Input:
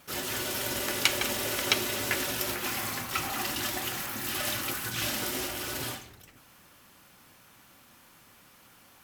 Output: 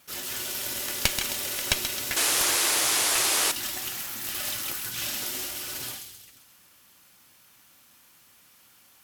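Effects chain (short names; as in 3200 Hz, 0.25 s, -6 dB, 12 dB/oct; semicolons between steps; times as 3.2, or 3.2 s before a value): high shelf 2100 Hz +9 dB; on a send: thin delay 0.132 s, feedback 49%, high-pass 3100 Hz, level -5.5 dB; on the sum: added harmonics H 4 -8 dB, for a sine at 2.5 dBFS; painted sound noise, 2.16–3.52, 290–12000 Hz -17 dBFS; gain -7.5 dB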